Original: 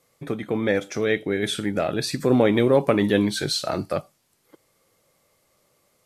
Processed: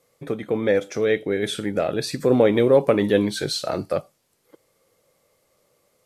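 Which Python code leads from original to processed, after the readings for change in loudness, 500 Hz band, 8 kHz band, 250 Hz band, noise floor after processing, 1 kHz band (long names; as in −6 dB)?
+1.0 dB, +3.0 dB, −1.5 dB, −1.0 dB, −68 dBFS, −0.5 dB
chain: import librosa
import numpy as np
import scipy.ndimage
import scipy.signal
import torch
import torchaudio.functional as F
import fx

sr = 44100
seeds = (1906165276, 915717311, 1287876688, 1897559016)

y = fx.peak_eq(x, sr, hz=490.0, db=6.0, octaves=0.59)
y = y * librosa.db_to_amplitude(-1.5)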